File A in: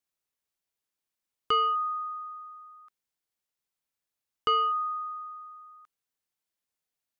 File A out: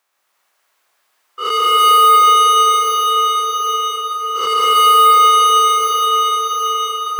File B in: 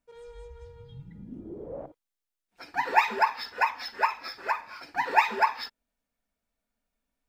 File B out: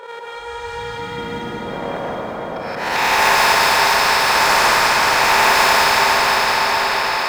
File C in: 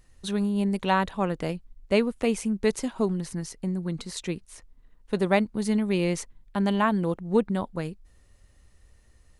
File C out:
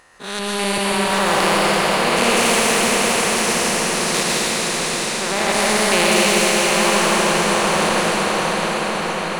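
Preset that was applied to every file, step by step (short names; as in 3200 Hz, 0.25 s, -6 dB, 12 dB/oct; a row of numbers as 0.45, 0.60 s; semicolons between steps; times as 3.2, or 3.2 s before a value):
stepped spectrum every 0.2 s; gate -54 dBFS, range -11 dB; HPF 610 Hz 6 dB/oct; bell 1000 Hz +13 dB 2.6 oct; in parallel at -4 dB: crossover distortion -36.5 dBFS; on the sum: limiter -12.5 dBFS; dynamic EQ 1500 Hz, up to -4 dB, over -28 dBFS, Q 0.84; auto swell 0.483 s; on a send: diffused feedback echo 0.645 s, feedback 53%, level -6.5 dB; on the sum: plate-style reverb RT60 4 s, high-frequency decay 0.85×, pre-delay 0.105 s, DRR -6 dB; spectral compressor 2:1; normalise peaks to -1.5 dBFS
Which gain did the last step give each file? +6.0, +7.5, +4.5 dB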